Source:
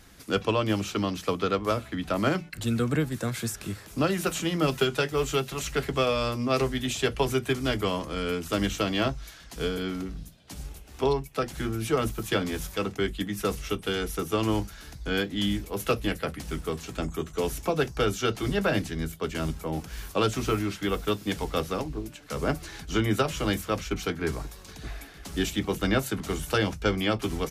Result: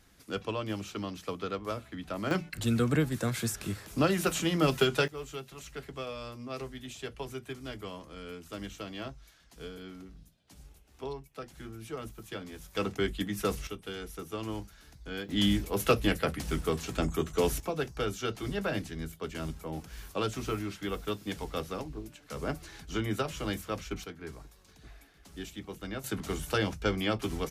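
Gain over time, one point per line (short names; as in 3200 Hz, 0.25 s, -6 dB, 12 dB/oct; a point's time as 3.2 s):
-9 dB
from 2.31 s -1 dB
from 5.08 s -14 dB
from 12.75 s -2.5 dB
from 13.67 s -11 dB
from 15.29 s +1 dB
from 17.6 s -7 dB
from 24.04 s -14 dB
from 26.04 s -4 dB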